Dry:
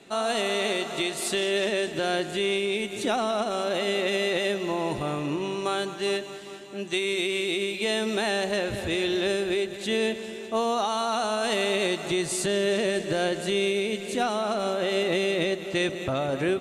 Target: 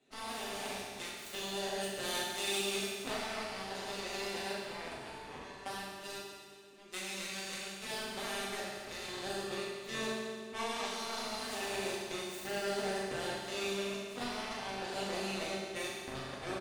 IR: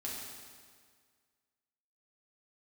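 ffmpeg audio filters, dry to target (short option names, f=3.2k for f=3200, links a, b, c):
-filter_complex "[0:a]asettb=1/sr,asplit=3[a][b][c];[a]atrim=end=1.814[d];[b]atrim=start=1.81:end=2.88,asetpts=PTS-STARTPTS,afade=t=in:d=0.004:c=qsin,afade=t=out:st=1.066:d=0.004:c=qsin,aemphasis=mode=production:type=50kf[e];[c]atrim=start=2.876[f];[d][e]acrossfade=d=0.004:c1=hsin:c2=qsin[g];[g][f]acrossfade=d=0.004:c1=qsin:c2=hsin,aeval=exprs='0.211*(cos(1*acos(clip(val(0)/0.211,-1,1)))-cos(1*PI/2))+0.075*(cos(3*acos(clip(val(0)/0.211,-1,1)))-cos(3*PI/2))+0.00668*(cos(5*acos(clip(val(0)/0.211,-1,1)))-cos(5*PI/2))+0.00841*(cos(7*acos(clip(val(0)/0.211,-1,1)))-cos(7*PI/2))':c=same,asplit=2[h][i];[i]adelay=36,volume=-6.5dB[j];[h][j]amix=inputs=2:normalize=0[k];[1:a]atrim=start_sample=2205[l];[k][l]afir=irnorm=-1:irlink=0,volume=-3.5dB"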